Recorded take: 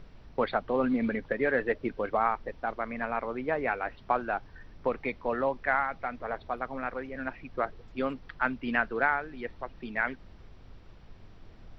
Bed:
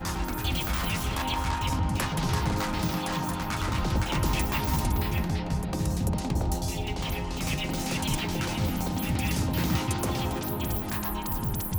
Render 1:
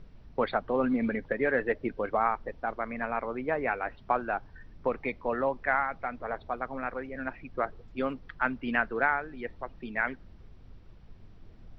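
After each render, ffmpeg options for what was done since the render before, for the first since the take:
ffmpeg -i in.wav -af "afftdn=noise_reduction=6:noise_floor=-52" out.wav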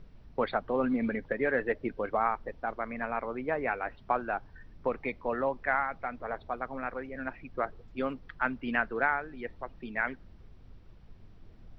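ffmpeg -i in.wav -af "volume=-1.5dB" out.wav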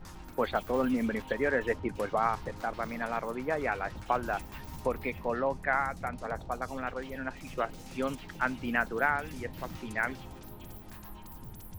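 ffmpeg -i in.wav -i bed.wav -filter_complex "[1:a]volume=-17.5dB[link_01];[0:a][link_01]amix=inputs=2:normalize=0" out.wav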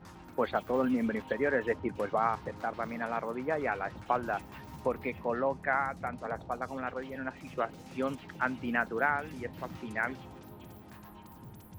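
ffmpeg -i in.wav -af "highpass=95,highshelf=frequency=3600:gain=-8.5" out.wav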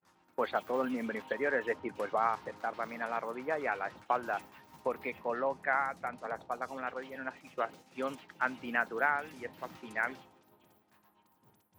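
ffmpeg -i in.wav -af "agate=range=-33dB:threshold=-40dB:ratio=3:detection=peak,highpass=frequency=470:poles=1" out.wav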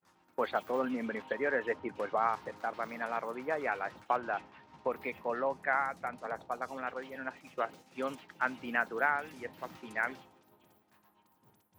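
ffmpeg -i in.wav -filter_complex "[0:a]asettb=1/sr,asplit=3[link_01][link_02][link_03];[link_01]atrim=end=0.794[link_04];[link_02]atrim=start=0.79:end=2.28,asetpts=PTS-STARTPTS,afade=type=in:duration=0.004:curve=qsin,afade=type=out:start_time=1.486:duration=0.004:curve=qsin,highshelf=frequency=8800:gain=-11.5[link_05];[link_03]atrim=start=2.276[link_06];[link_04][link_05]acrossfade=duration=0.004:curve1=hsin:curve2=qsin[link_07];[link_07][link_06]acrossfade=duration=0.004:curve1=qsin:curve2=hsin,asettb=1/sr,asplit=3[link_08][link_09][link_10];[link_08]atrim=end=4.164[link_11];[link_09]atrim=start=4.16:end=4.92,asetpts=PTS-STARTPTS,afade=type=in:duration=0.004:curve=qsin,afade=type=out:start_time=0.756:duration=0.004:curve=qsin,lowpass=4100[link_12];[link_10]atrim=start=4.916[link_13];[link_11][link_12]acrossfade=duration=0.004:curve1=hsin:curve2=qsin[link_14];[link_14][link_13]acrossfade=duration=0.004:curve1=qsin:curve2=hsin" out.wav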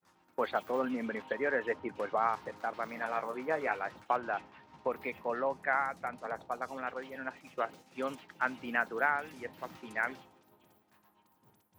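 ffmpeg -i in.wav -filter_complex "[0:a]asettb=1/sr,asplit=3[link_01][link_02][link_03];[link_01]atrim=end=2.954[link_04];[link_02]atrim=start=2.95:end=3.75,asetpts=PTS-STARTPTS,afade=type=in:duration=0.004:curve=qsin,afade=type=out:start_time=0.796:duration=0.004:curve=qsin,asplit=2[link_05][link_06];[link_06]adelay=19,volume=-7dB[link_07];[link_05][link_07]amix=inputs=2:normalize=0,atrim=end_sample=35280[link_08];[link_03]atrim=start=3.746[link_09];[link_04][link_08]acrossfade=duration=0.004:curve1=hsin:curve2=qsin[link_10];[link_10][link_09]acrossfade=duration=0.004:curve1=qsin:curve2=hsin" out.wav

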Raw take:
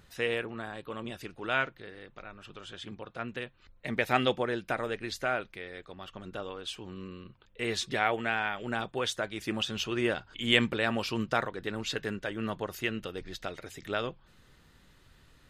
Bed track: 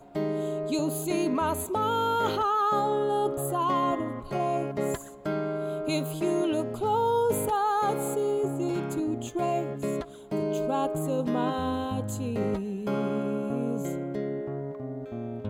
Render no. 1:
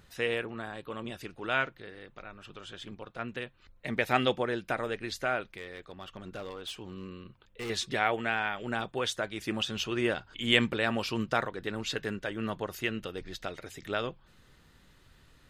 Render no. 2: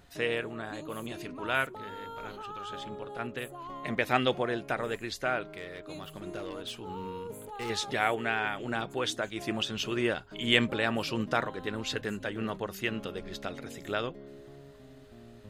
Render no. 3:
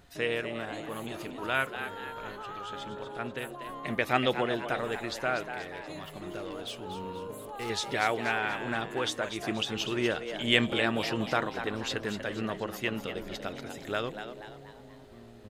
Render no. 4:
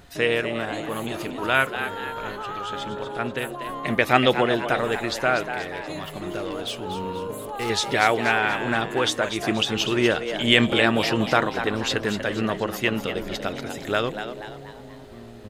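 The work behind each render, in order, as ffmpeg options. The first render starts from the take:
ffmpeg -i in.wav -filter_complex "[0:a]asettb=1/sr,asplit=3[link_01][link_02][link_03];[link_01]atrim=end=2.784[link_04];[link_02]atrim=start=2.78:end=3.19,asetpts=PTS-STARTPTS,afade=type=in:duration=0.004:curve=qsin,afade=type=out:start_time=0.406:duration=0.004:curve=qsin,aeval=exprs='if(lt(val(0),0),0.708*val(0),val(0))':channel_layout=same[link_05];[link_03]atrim=start=3.186[link_06];[link_04][link_05]acrossfade=duration=0.004:curve1=hsin:curve2=qsin[link_07];[link_07][link_06]acrossfade=duration=0.004:curve1=qsin:curve2=hsin,asettb=1/sr,asplit=3[link_08][link_09][link_10];[link_08]atrim=end=5.574[link_11];[link_09]atrim=start=5.57:end=7.7,asetpts=PTS-STARTPTS,afade=type=in:duration=0.004:curve=qsin,afade=type=out:start_time=2.126:duration=0.004:curve=qsin,volume=34.5dB,asoftclip=hard,volume=-34.5dB[link_12];[link_10]atrim=start=7.696[link_13];[link_11][link_12]acrossfade=duration=0.004:curve1=hsin:curve2=qsin[link_14];[link_14][link_13]acrossfade=duration=0.004:curve1=qsin:curve2=hsin" out.wav
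ffmpeg -i in.wav -i bed.wav -filter_complex "[1:a]volume=-16.5dB[link_01];[0:a][link_01]amix=inputs=2:normalize=0" out.wav
ffmpeg -i in.wav -filter_complex "[0:a]asplit=6[link_01][link_02][link_03][link_04][link_05][link_06];[link_02]adelay=240,afreqshift=110,volume=-9.5dB[link_07];[link_03]adelay=480,afreqshift=220,volume=-16.2dB[link_08];[link_04]adelay=720,afreqshift=330,volume=-23dB[link_09];[link_05]adelay=960,afreqshift=440,volume=-29.7dB[link_10];[link_06]adelay=1200,afreqshift=550,volume=-36.5dB[link_11];[link_01][link_07][link_08][link_09][link_10][link_11]amix=inputs=6:normalize=0" out.wav
ffmpeg -i in.wav -af "volume=8.5dB,alimiter=limit=-2dB:level=0:latency=1" out.wav

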